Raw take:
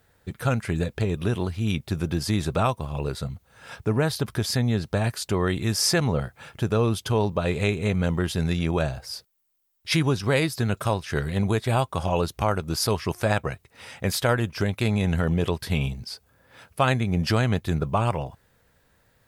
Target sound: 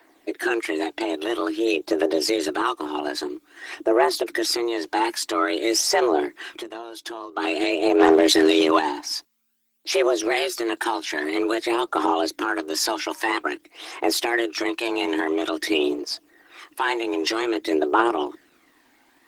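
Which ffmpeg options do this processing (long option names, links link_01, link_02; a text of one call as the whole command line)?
ffmpeg -i in.wav -filter_complex "[0:a]asettb=1/sr,asplit=3[link_01][link_02][link_03];[link_01]atrim=end=3.744[link_04];[link_02]atrim=start=3.74:end=4.15,asetpts=PTS-STARTPTS,afade=type=in:duration=0.004:curve=qsin,afade=type=out:start_time=0.406:duration=0.004:curve=qsin,equalizer=frequency=4200:width=2.5:gain=-5.5[link_05];[link_03]atrim=start=4.146[link_06];[link_04][link_05]acrossfade=duration=0.004:curve1=hsin:curve2=qsin[link_07];[link_07][link_06]acrossfade=duration=0.004:curve1=qsin:curve2=hsin,asettb=1/sr,asplit=3[link_08][link_09][link_10];[link_08]atrim=end=6.584[link_11];[link_09]atrim=start=6.58:end=7.37,asetpts=PTS-STARTPTS,afade=type=in:duration=0.004:curve=qsin,afade=type=out:start_time=0.786:duration=0.004:curve=qsin,acompressor=threshold=-33dB:ratio=20[link_12];[link_10]atrim=start=7.366[link_13];[link_11][link_12]acrossfade=duration=0.004:curve1=hsin:curve2=qsin[link_14];[link_14][link_13]acrossfade=duration=0.004:curve1=qsin:curve2=hsin,alimiter=limit=-18dB:level=0:latency=1:release=46,asplit=3[link_15][link_16][link_17];[link_15]afade=type=out:start_time=7.99:duration=0.02[link_18];[link_16]acontrast=81,afade=type=in:start_time=7.99:duration=0.02,afade=type=out:start_time=8.78:duration=0.02[link_19];[link_17]afade=type=in:start_time=8.78:duration=0.02[link_20];[link_18][link_19][link_20]amix=inputs=3:normalize=0,aphaser=in_gain=1:out_gain=1:delay=1.6:decay=0.57:speed=0.5:type=triangular,asoftclip=type=hard:threshold=-10dB,asplit=2[link_21][link_22];[link_22]highpass=frequency=720:poles=1,volume=6dB,asoftclip=type=tanh:threshold=-10dB[link_23];[link_21][link_23]amix=inputs=2:normalize=0,lowpass=frequency=6100:poles=1,volume=-6dB,afreqshift=230,volume=4.5dB" -ar 48000 -c:a libopus -b:a 16k out.opus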